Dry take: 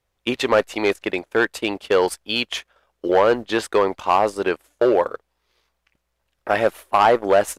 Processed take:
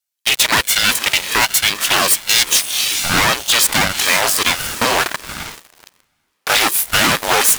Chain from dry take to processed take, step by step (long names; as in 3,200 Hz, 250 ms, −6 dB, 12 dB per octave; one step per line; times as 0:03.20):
lower of the sound and its delayed copy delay 1.4 ms
tilt shelving filter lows −8.5 dB, about 750 Hz
gain into a clipping stage and back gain 10.5 dB
first-order pre-emphasis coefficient 0.9
feedback delay with all-pass diffusion 471 ms, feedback 42%, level −15 dB
in parallel at +1.5 dB: downward compressor 6 to 1, threshold −33 dBFS, peak gain reduction 14 dB
on the sum: leveller curve on the samples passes 5
ring modulator whose carrier an LFO sweeps 410 Hz, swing 70%, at 1.3 Hz
level +1 dB